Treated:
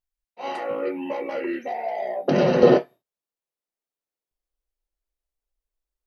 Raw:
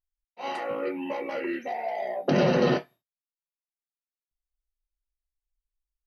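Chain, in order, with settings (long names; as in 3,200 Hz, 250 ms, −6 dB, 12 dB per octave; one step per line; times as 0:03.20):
parametric band 470 Hz +4 dB 1.8 octaves, from 0:02.63 +11.5 dB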